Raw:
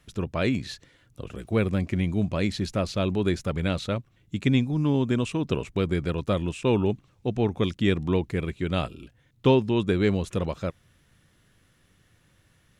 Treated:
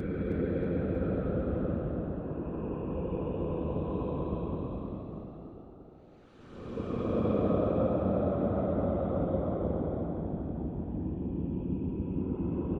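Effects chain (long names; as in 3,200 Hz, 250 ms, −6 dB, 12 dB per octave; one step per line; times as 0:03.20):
treble cut that deepens with the level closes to 700 Hz, closed at −21.5 dBFS
extreme stretch with random phases 31×, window 0.05 s, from 0:06.06
comb filter 3.9 ms, depth 43%
harmonic and percussive parts rebalanced harmonic −11 dB
echo with shifted repeats 317 ms, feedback 55%, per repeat +58 Hz, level −7.5 dB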